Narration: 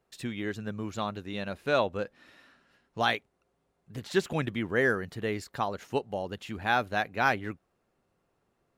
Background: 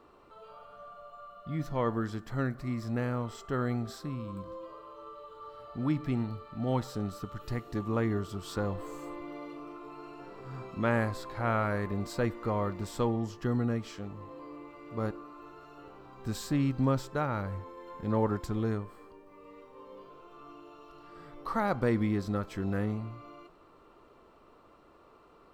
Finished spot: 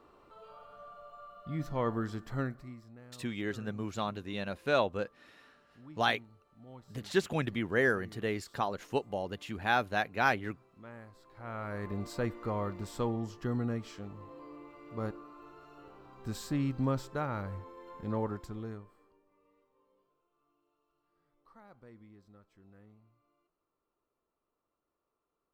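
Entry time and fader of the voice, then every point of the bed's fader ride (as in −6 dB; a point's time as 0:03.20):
3.00 s, −2.0 dB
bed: 0:02.40 −2 dB
0:02.95 −21.5 dB
0:11.12 −21.5 dB
0:11.91 −3.5 dB
0:18.00 −3.5 dB
0:20.27 −27.5 dB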